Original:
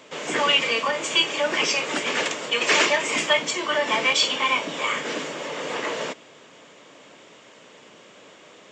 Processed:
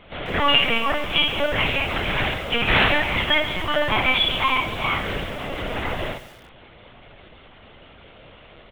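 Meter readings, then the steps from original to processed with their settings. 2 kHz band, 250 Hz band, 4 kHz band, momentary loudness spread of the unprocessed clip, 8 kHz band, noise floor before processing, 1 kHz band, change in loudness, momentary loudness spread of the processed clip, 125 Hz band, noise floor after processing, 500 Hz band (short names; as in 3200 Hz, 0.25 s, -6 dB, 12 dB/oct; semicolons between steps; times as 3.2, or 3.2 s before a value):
+1.5 dB, +3.5 dB, +1.0 dB, 11 LU, under -15 dB, -50 dBFS, +2.0 dB, +1.5 dB, 11 LU, +15.5 dB, -48 dBFS, 0.0 dB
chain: on a send: early reflections 21 ms -6.5 dB, 56 ms -3.5 dB; on the sum: LPC vocoder at 8 kHz pitch kept; lo-fi delay 0.137 s, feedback 55%, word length 6-bit, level -13.5 dB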